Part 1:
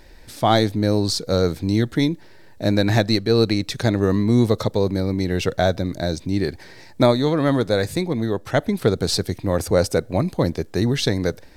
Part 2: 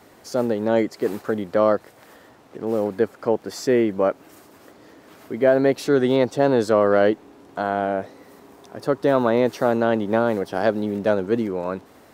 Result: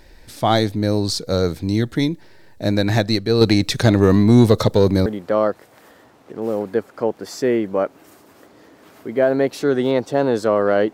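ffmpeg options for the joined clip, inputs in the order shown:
-filter_complex "[0:a]asettb=1/sr,asplit=3[a][b][c];[a]atrim=end=3.414[d];[b]atrim=start=3.41:end=5.06,asetpts=PTS-STARTPTS,afade=t=in:d=0.004:c=qsin,afade=t=out:st=1.646:d=0.004:c=qsin,acontrast=58[e];[c]atrim=start=5.056[f];[d][e]acrossfade=d=0.004:c1=hsin:c2=qsin[g];[g][f]acrossfade=d=0.004:c1=qsin:c2=hsin,apad=whole_dur=10.93,atrim=end=10.93,atrim=end=5.062[h];[1:a]atrim=start=1.308:end=7.18[i];[h][i]acrossfade=d=0.004:c1=hsin:c2=hsin"

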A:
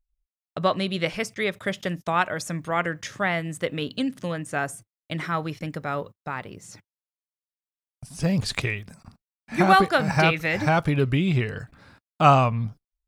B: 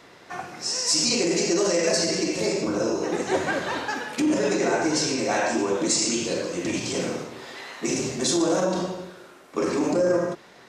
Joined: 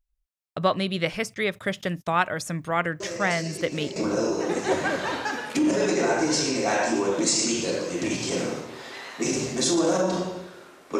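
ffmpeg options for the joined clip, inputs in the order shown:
-filter_complex "[1:a]asplit=2[a][b];[0:a]apad=whole_dur=10.99,atrim=end=10.99,atrim=end=3.962[c];[b]atrim=start=2.588:end=9.62[d];[a]atrim=start=1.63:end=2.59,asetpts=PTS-STARTPTS,volume=-11.5dB,afade=t=in:d=0.004:c=hsin,afade=t=out:st=0.956:d=0.004:c=hsin,adelay=3000[e];[c][d]acrossfade=d=0.004:c1=hsin:c2=hsin[f];[f][e]amix=inputs=2:normalize=0"

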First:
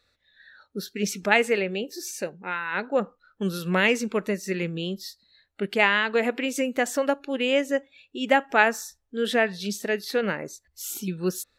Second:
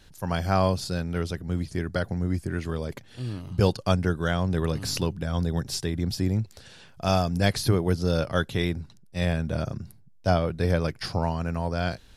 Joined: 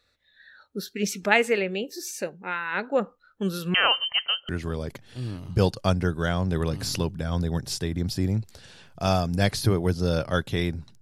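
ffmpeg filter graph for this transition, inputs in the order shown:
-filter_complex "[0:a]asettb=1/sr,asplit=3[a][b][c];[a]atrim=end=3.744[d];[b]atrim=start=3.74:end=4.49,asetpts=PTS-STARTPTS,afade=t=in:d=0.004:c=qsin,afade=t=out:st=0.746:d=0.004:c=qsin,lowpass=f=2.8k:t=q:w=0.5098,lowpass=f=2.8k:t=q:w=0.6013,lowpass=f=2.8k:t=q:w=0.9,lowpass=f=2.8k:t=q:w=2.563,afreqshift=-3300[e];[c]atrim=start=4.486[f];[d][e]acrossfade=d=0.004:c1=hsin:c2=qsin[g];[g][f]acrossfade=d=0.004:c1=qsin:c2=hsin,apad=whole_dur=11.01,atrim=end=11.01,atrim=end=4.492[h];[1:a]atrim=start=2.508:end=9.03[i];[h][i]acrossfade=d=0.004:c1=hsin:c2=hsin"

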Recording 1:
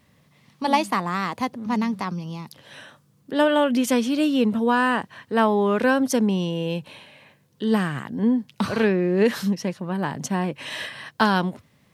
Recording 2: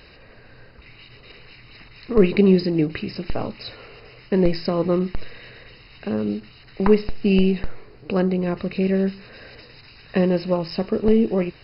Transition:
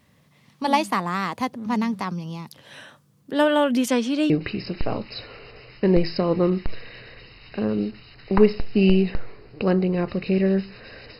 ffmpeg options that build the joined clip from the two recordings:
-filter_complex "[0:a]asettb=1/sr,asplit=3[a][b][c];[a]atrim=end=3.884[d];[b]atrim=start=3.88:end=4.3,asetpts=PTS-STARTPTS,afade=t=in:d=0.004:c=qsin,afade=t=out:st=0.416:d=0.004:c=qsin,highpass=190,lowpass=6.9k[e];[c]atrim=start=4.296[f];[d][e]acrossfade=d=0.004:c1=hsin:c2=qsin[g];[g][f]acrossfade=d=0.004:c1=qsin:c2=hsin,apad=whole_dur=11.19,atrim=end=11.19,atrim=end=4.302[h];[1:a]atrim=start=2.788:end=9.68[i];[h][i]acrossfade=d=0.004:c1=hsin:c2=hsin"

